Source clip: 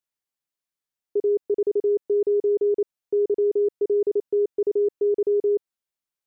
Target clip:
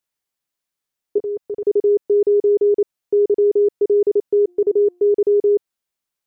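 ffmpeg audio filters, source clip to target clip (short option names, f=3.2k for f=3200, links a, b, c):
-filter_complex "[0:a]asettb=1/sr,asplit=3[a][b][c];[a]atrim=end=1.184[d];[b]atrim=start=1.18:end=1.67,asetpts=PTS-STARTPTS,afade=t=in:d=0.004:c=qsin,afade=t=out:st=0.486:d=0.004:c=qsin,equalizer=f=360:w=2.6:g=-14[e];[c]atrim=start=1.666[f];[d][e]acrossfade=d=0.004:c1=hsin:c2=qsin[g];[g][f]acrossfade=d=0.004:c1=qsin:c2=hsin,asplit=3[h][i][j];[h]afade=t=out:st=4.47:d=0.02[k];[i]bandreject=f=354.1:t=h:w=4,bandreject=f=708.2:t=h:w=4,bandreject=f=1.0623k:t=h:w=4,afade=t=in:st=4.47:d=0.02,afade=t=out:st=5.09:d=0.02[l];[j]afade=t=in:st=5.09:d=0.02[m];[k][l][m]amix=inputs=3:normalize=0,volume=6dB"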